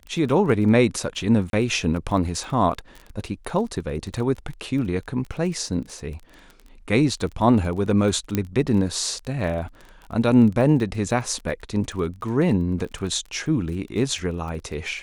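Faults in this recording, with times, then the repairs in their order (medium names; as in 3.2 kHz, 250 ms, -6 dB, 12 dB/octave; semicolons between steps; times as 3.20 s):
crackle 22 per s -31 dBFS
1.50–1.53 s: dropout 32 ms
8.35 s: pop -9 dBFS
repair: de-click; interpolate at 1.50 s, 32 ms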